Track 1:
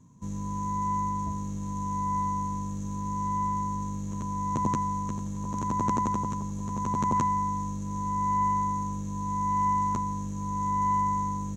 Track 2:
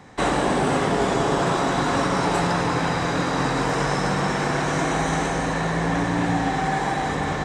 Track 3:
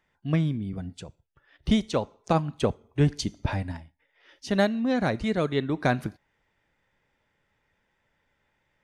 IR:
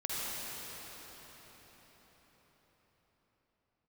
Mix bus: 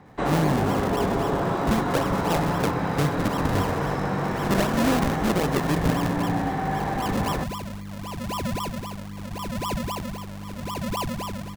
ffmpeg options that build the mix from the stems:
-filter_complex "[0:a]adelay=50,volume=-2.5dB[a];[1:a]lowpass=f=1.3k:p=1,volume=-2.5dB[b];[2:a]equalizer=f=1.7k:t=o:w=1.2:g=7.5,volume=2dB[c];[a][c]amix=inputs=2:normalize=0,acrusher=samples=39:mix=1:aa=0.000001:lfo=1:lforange=39:lforate=3.8,alimiter=limit=-15.5dB:level=0:latency=1:release=165,volume=0dB[d];[b][d]amix=inputs=2:normalize=0"

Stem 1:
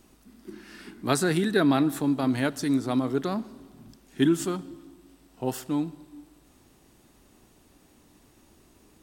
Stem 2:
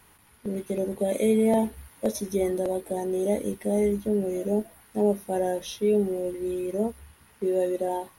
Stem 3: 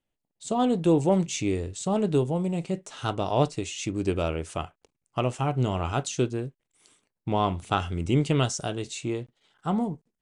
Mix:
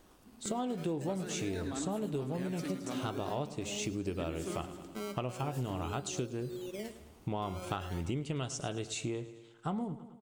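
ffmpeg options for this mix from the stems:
-filter_complex "[0:a]acompressor=threshold=-25dB:ratio=6,volume=-6.5dB,asplit=2[a][b];[b]volume=-6dB[c];[1:a]acompressor=threshold=-35dB:ratio=2.5,acrusher=samples=17:mix=1:aa=0.000001:lfo=1:lforange=17:lforate=0.44,volume=-7dB,asplit=2[d][e];[e]volume=-13.5dB[f];[2:a]volume=-1dB,asplit=2[g][h];[h]volume=-18dB[i];[c][f][i]amix=inputs=3:normalize=0,aecho=0:1:107|214|321|428|535|642|749|856:1|0.52|0.27|0.141|0.0731|0.038|0.0198|0.0103[j];[a][d][g][j]amix=inputs=4:normalize=0,acompressor=threshold=-33dB:ratio=6"

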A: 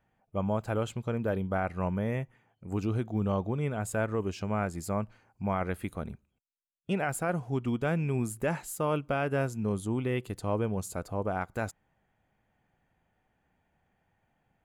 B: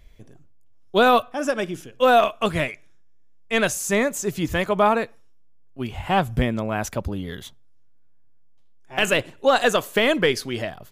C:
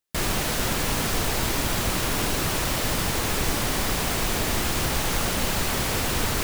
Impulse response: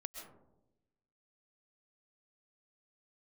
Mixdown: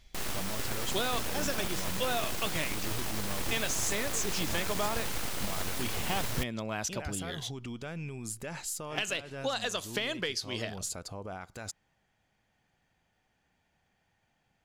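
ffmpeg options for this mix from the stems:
-filter_complex "[0:a]alimiter=level_in=6dB:limit=-24dB:level=0:latency=1,volume=-6dB,volume=-2.5dB[a];[1:a]volume=-9dB[b];[2:a]aeval=exprs='abs(val(0))':c=same,volume=-8dB[c];[a][b]amix=inputs=2:normalize=0,equalizer=f=5k:w=0.69:g=14.5,acompressor=threshold=-30dB:ratio=6,volume=0dB[d];[c][d]amix=inputs=2:normalize=0"

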